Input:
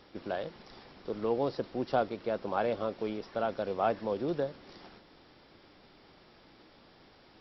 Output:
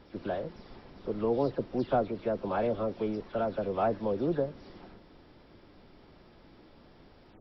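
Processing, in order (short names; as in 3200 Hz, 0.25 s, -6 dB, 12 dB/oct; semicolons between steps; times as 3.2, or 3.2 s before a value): spectral delay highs early, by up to 0.143 s; tilt -2 dB/oct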